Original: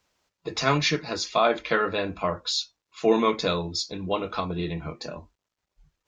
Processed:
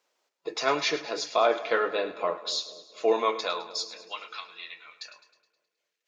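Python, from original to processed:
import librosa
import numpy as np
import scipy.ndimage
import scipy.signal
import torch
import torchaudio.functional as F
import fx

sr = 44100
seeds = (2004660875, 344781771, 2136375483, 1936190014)

y = fx.filter_sweep_highpass(x, sr, from_hz=430.0, to_hz=2000.0, start_s=2.96, end_s=4.35, q=1.4)
y = fx.echo_split(y, sr, split_hz=620.0, low_ms=240, high_ms=105, feedback_pct=52, wet_db=-14.0)
y = y * 10.0 ** (-3.5 / 20.0)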